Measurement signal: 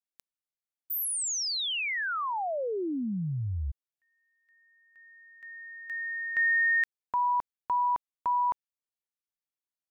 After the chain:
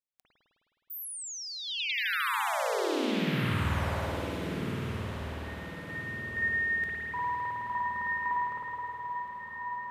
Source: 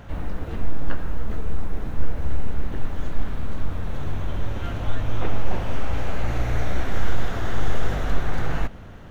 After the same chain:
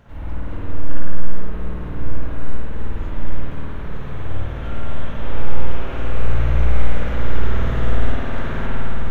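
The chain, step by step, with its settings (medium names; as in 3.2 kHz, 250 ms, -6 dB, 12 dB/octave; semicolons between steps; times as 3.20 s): band-stop 750 Hz, Q 12; on a send: echo that smears into a reverb 1404 ms, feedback 41%, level -5.5 dB; on the sum: spring tank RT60 3.3 s, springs 52 ms, chirp 70 ms, DRR -9.5 dB; trim -8.5 dB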